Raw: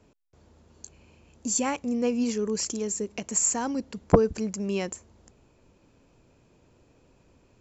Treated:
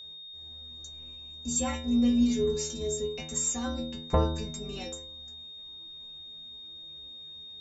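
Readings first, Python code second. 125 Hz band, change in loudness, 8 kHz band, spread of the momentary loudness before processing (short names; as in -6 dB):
-0.5 dB, -2.5 dB, n/a, 10 LU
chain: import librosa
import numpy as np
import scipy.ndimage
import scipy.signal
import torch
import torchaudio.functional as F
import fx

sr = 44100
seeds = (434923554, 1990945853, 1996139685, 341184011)

y = fx.octave_divider(x, sr, octaves=2, level_db=0.0)
y = fx.stiff_resonator(y, sr, f0_hz=77.0, decay_s=0.82, stiffness=0.008)
y = y + 10.0 ** (-51.0 / 20.0) * np.sin(2.0 * np.pi * 3700.0 * np.arange(len(y)) / sr)
y = F.gain(torch.from_numpy(y), 8.5).numpy()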